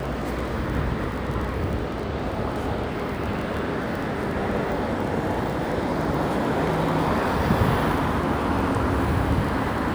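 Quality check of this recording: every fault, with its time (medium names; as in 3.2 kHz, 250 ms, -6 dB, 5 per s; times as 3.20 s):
crackle 16 per s -28 dBFS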